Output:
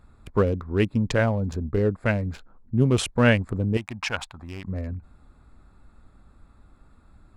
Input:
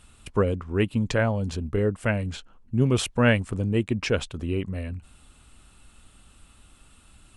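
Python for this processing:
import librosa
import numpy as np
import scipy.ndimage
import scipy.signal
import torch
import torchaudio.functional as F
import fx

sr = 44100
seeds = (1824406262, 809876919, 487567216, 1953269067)

y = fx.wiener(x, sr, points=15)
y = fx.low_shelf_res(y, sr, hz=610.0, db=-10.0, q=3.0, at=(3.77, 4.65))
y = y * 10.0 ** (1.5 / 20.0)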